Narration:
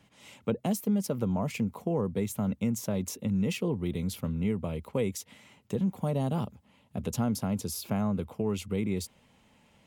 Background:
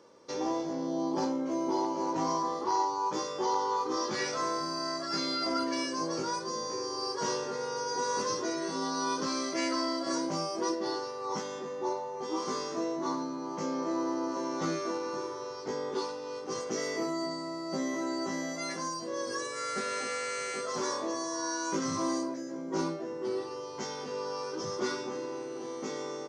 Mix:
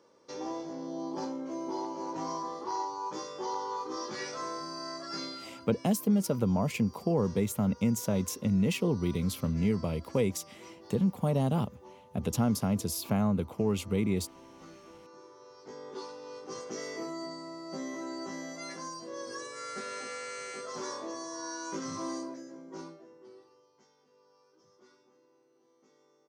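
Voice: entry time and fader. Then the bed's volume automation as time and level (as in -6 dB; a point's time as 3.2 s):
5.20 s, +1.5 dB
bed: 5.24 s -5.5 dB
5.57 s -19.5 dB
14.95 s -19.5 dB
16.23 s -5.5 dB
22.35 s -5.5 dB
23.93 s -29.5 dB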